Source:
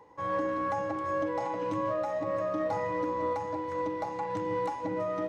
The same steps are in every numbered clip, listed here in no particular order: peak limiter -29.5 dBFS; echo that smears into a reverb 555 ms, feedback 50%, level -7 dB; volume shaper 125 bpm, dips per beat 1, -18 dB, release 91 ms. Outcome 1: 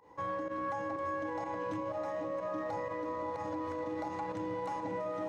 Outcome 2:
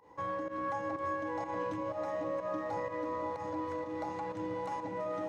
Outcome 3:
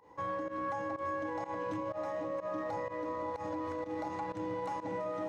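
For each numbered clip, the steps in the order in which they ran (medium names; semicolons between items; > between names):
volume shaper > echo that smears into a reverb > peak limiter; peak limiter > volume shaper > echo that smears into a reverb; echo that smears into a reverb > peak limiter > volume shaper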